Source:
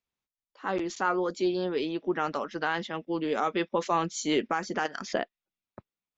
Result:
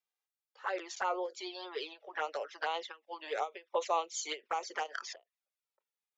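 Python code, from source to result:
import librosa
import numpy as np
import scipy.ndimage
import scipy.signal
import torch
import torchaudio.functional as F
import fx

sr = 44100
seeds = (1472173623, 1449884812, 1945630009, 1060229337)

y = scipy.signal.sosfilt(scipy.signal.butter(6, 460.0, 'highpass', fs=sr, output='sos'), x)
y = fx.env_flanger(y, sr, rest_ms=2.5, full_db=-26.0)
y = fx.end_taper(y, sr, db_per_s=310.0)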